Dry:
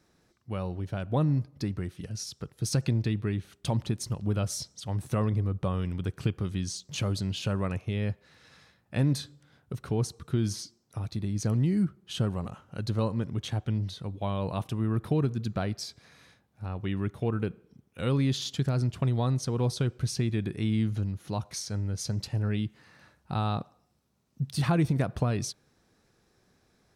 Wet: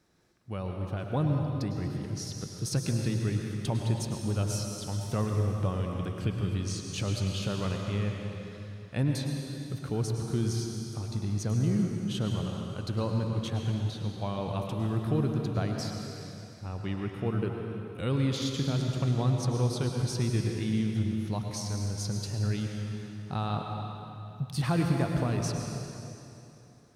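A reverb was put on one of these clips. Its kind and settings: plate-style reverb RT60 3 s, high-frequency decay 0.9×, pre-delay 90 ms, DRR 1.5 dB; trim -2.5 dB

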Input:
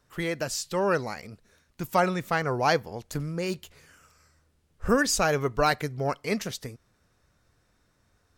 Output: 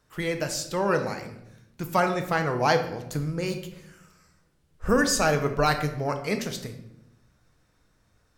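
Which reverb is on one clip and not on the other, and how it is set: simulated room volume 250 m³, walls mixed, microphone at 0.58 m

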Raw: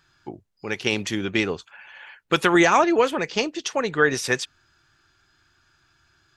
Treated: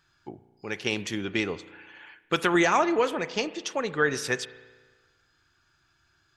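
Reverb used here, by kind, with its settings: spring tank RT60 1.4 s, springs 34 ms, chirp 50 ms, DRR 14.5 dB; trim -5 dB

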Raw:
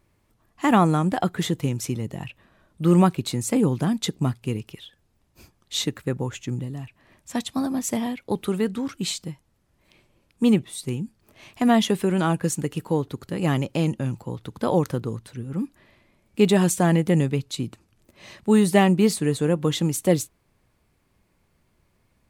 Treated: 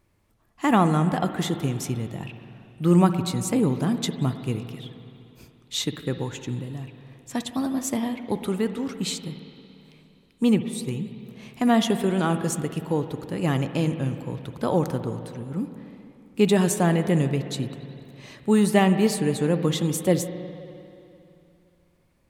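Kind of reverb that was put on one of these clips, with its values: spring tank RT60 2.8 s, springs 52/58 ms, chirp 45 ms, DRR 9 dB; trim -1.5 dB

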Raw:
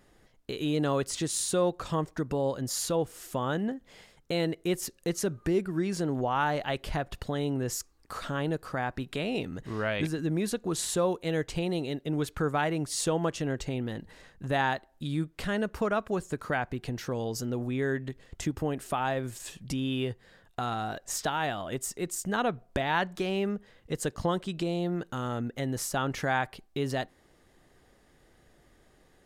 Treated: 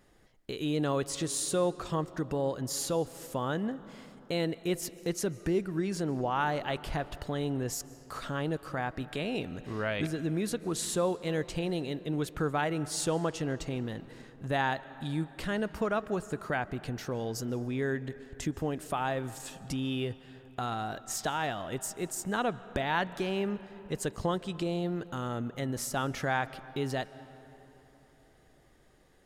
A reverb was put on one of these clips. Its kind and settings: algorithmic reverb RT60 3.7 s, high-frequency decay 0.5×, pre-delay 105 ms, DRR 16.5 dB; trim -2 dB

